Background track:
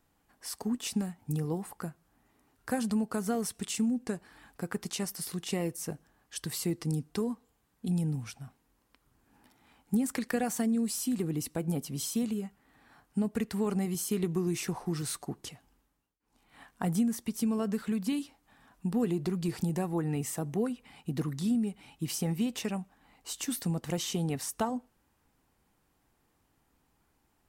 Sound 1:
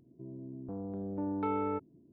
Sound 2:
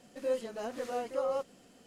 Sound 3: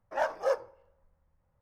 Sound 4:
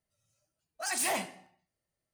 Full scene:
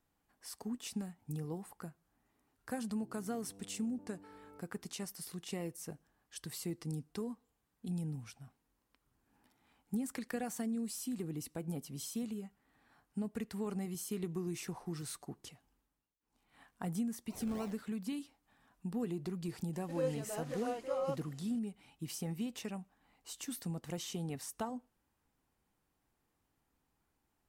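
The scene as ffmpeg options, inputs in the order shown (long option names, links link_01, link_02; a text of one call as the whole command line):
ffmpeg -i bed.wav -i cue0.wav -i cue1.wav -i cue2.wav -i cue3.wav -filter_complex "[0:a]volume=-8.5dB[link_01];[1:a]acompressor=threshold=-47dB:ratio=6:attack=3.2:release=140:knee=1:detection=peak[link_02];[4:a]acrusher=samples=37:mix=1:aa=0.000001:lfo=1:lforange=22.2:lforate=3.3[link_03];[link_02]atrim=end=2.12,asetpts=PTS-STARTPTS,volume=-7.5dB,afade=type=in:duration=0.004:curve=hsin,afade=type=out:start_time=2.116:duration=0.004:curve=hsin,adelay=2810[link_04];[link_03]atrim=end=2.13,asetpts=PTS-STARTPTS,volume=-18dB,afade=type=in:duration=0.004:curve=hsin,afade=type=out:start_time=2.126:duration=0.004:curve=hsin,adelay=16500[link_05];[2:a]atrim=end=1.86,asetpts=PTS-STARTPTS,volume=-4dB,afade=type=in:duration=0.004:curve=hsin,afade=type=out:start_time=1.856:duration=0.004:curve=hsin,adelay=19730[link_06];[link_01][link_04][link_05][link_06]amix=inputs=4:normalize=0" out.wav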